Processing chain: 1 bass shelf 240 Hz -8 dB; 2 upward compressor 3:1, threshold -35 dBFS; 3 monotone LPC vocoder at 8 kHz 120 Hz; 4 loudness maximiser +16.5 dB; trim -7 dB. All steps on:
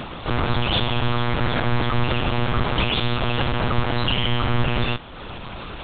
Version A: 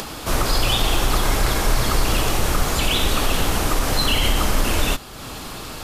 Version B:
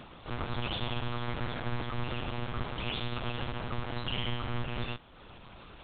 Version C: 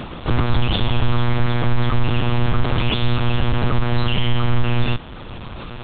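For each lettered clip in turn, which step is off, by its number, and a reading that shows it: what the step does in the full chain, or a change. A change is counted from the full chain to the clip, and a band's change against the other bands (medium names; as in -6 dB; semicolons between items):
3, 125 Hz band -3.5 dB; 4, crest factor change +4.0 dB; 1, 125 Hz band +6.0 dB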